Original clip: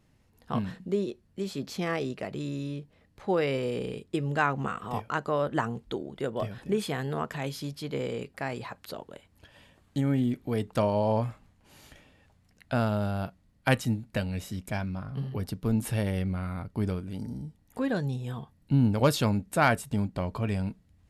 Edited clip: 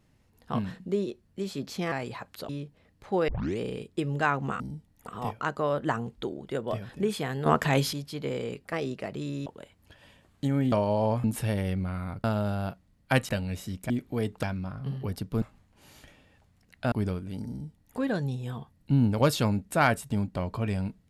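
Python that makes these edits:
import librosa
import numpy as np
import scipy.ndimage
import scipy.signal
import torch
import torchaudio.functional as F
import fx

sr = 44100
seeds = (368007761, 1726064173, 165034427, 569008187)

y = fx.edit(x, sr, fx.swap(start_s=1.92, length_s=0.73, other_s=8.42, other_length_s=0.57),
    fx.tape_start(start_s=3.44, length_s=0.31),
    fx.clip_gain(start_s=7.15, length_s=0.47, db=9.5),
    fx.move(start_s=10.25, length_s=0.53, to_s=14.74),
    fx.swap(start_s=11.3, length_s=1.5, other_s=15.73, other_length_s=1.0),
    fx.cut(start_s=13.85, length_s=0.28),
    fx.duplicate(start_s=17.31, length_s=0.47, to_s=4.76), tone=tone)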